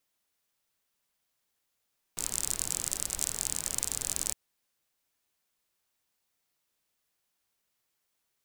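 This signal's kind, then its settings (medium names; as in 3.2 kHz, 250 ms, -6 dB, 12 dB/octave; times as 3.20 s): rain from filtered ticks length 2.16 s, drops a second 44, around 7.7 kHz, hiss -10 dB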